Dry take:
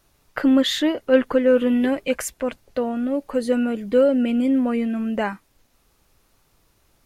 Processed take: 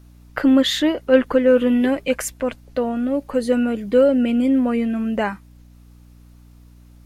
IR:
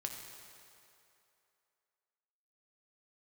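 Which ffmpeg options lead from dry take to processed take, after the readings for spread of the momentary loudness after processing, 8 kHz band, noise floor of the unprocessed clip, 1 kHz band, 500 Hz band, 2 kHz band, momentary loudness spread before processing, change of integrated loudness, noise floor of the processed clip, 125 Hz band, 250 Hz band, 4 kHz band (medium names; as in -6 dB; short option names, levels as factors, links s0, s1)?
10 LU, +2.0 dB, -64 dBFS, +2.0 dB, +2.0 dB, +2.0 dB, 10 LU, +2.0 dB, -47 dBFS, no reading, +2.0 dB, +2.0 dB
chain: -af "aeval=exprs='val(0)+0.00447*(sin(2*PI*60*n/s)+sin(2*PI*2*60*n/s)/2+sin(2*PI*3*60*n/s)/3+sin(2*PI*4*60*n/s)/4+sin(2*PI*5*60*n/s)/5)':c=same,volume=1.26"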